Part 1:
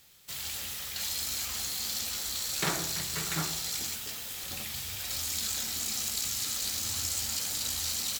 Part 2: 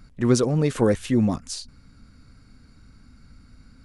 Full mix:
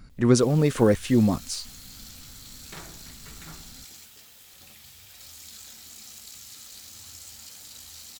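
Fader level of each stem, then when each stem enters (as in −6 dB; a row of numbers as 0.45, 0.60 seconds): −12.0, +0.5 decibels; 0.10, 0.00 seconds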